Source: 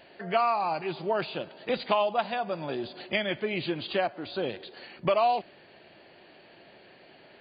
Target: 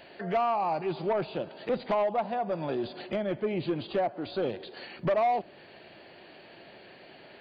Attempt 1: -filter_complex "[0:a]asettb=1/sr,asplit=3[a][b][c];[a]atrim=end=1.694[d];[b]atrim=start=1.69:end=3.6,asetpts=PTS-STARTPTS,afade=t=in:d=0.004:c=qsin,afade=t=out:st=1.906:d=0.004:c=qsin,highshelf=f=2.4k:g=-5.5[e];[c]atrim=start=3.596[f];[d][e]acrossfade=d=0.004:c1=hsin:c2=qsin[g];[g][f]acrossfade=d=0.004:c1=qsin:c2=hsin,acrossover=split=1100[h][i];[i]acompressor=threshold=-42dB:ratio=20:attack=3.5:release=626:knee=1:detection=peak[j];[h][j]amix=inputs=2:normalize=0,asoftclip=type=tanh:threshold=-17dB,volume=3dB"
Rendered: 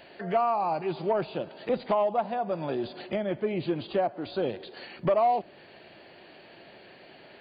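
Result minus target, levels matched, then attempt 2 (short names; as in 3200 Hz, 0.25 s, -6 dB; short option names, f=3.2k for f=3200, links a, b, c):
soft clip: distortion -9 dB
-filter_complex "[0:a]asettb=1/sr,asplit=3[a][b][c];[a]atrim=end=1.694[d];[b]atrim=start=1.69:end=3.6,asetpts=PTS-STARTPTS,afade=t=in:d=0.004:c=qsin,afade=t=out:st=1.906:d=0.004:c=qsin,highshelf=f=2.4k:g=-5.5[e];[c]atrim=start=3.596[f];[d][e]acrossfade=d=0.004:c1=hsin:c2=qsin[g];[g][f]acrossfade=d=0.004:c1=qsin:c2=hsin,acrossover=split=1100[h][i];[i]acompressor=threshold=-42dB:ratio=20:attack=3.5:release=626:knee=1:detection=peak[j];[h][j]amix=inputs=2:normalize=0,asoftclip=type=tanh:threshold=-23.5dB,volume=3dB"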